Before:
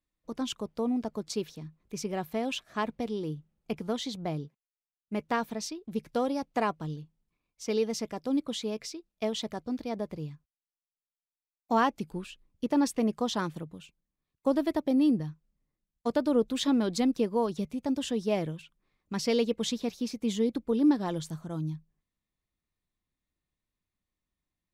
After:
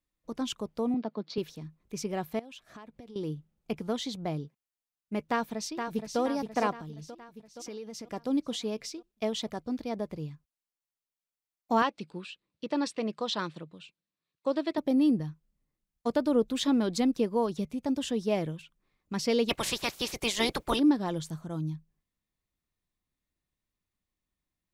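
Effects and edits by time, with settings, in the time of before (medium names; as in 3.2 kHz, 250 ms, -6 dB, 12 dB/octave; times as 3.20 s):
0.94–1.38 s: elliptic band-pass 180–4300 Hz
2.39–3.16 s: compression 20:1, threshold -43 dBFS
5.28–6.20 s: echo throw 470 ms, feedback 55%, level -6 dB
6.71–8.12 s: compression, threshold -38 dBFS
11.82–14.78 s: cabinet simulation 190–7700 Hz, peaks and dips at 250 Hz -8 dB, 410 Hz -3 dB, 790 Hz -5 dB, 2.6 kHz +3 dB, 4 kHz +6 dB, 6.5 kHz -7 dB
19.48–20.78 s: spectral peaks clipped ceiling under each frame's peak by 29 dB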